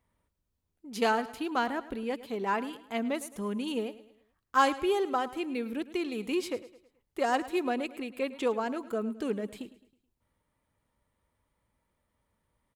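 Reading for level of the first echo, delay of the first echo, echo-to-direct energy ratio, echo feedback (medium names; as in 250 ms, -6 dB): -16.5 dB, 107 ms, -15.5 dB, 42%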